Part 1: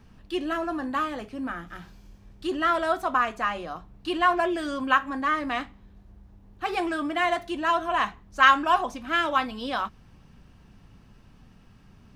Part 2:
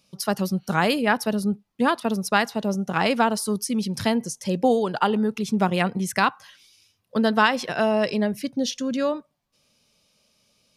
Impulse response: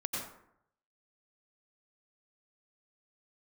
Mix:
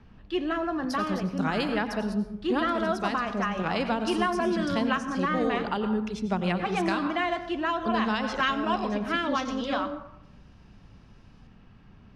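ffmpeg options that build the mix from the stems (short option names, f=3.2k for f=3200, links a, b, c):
-filter_complex "[0:a]lowpass=3.7k,volume=-0.5dB,asplit=3[a][b][c];[b]volume=-16dB[d];[1:a]lowpass=5.7k,adelay=700,volume=-8.5dB,asplit=2[e][f];[f]volume=-7.5dB[g];[c]apad=whole_len=505815[h];[e][h]sidechaincompress=threshold=-26dB:ratio=8:attack=16:release=233[i];[2:a]atrim=start_sample=2205[j];[d][g]amix=inputs=2:normalize=0[k];[k][j]afir=irnorm=-1:irlink=0[l];[a][i][l]amix=inputs=3:normalize=0,acrossover=split=480|3000[m][n][o];[n]acompressor=threshold=-27dB:ratio=6[p];[m][p][o]amix=inputs=3:normalize=0"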